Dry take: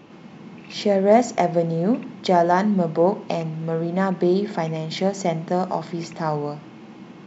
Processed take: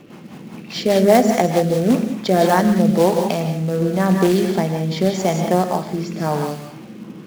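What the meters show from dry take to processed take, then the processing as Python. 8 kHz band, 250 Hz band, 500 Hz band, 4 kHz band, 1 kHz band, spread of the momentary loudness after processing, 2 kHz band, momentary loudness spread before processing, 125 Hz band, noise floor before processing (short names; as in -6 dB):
n/a, +5.5 dB, +3.5 dB, +5.5 dB, +2.5 dB, 16 LU, +4.5 dB, 11 LU, +5.5 dB, -44 dBFS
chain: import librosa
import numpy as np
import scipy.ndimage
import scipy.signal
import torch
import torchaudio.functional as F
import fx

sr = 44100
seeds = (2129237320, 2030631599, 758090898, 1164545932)

y = fx.quant_float(x, sr, bits=2)
y = fx.rev_gated(y, sr, seeds[0], gate_ms=210, shape='rising', drr_db=5.5)
y = fx.rotary_switch(y, sr, hz=5.0, then_hz=0.9, switch_at_s=1.9)
y = y * librosa.db_to_amplitude(5.5)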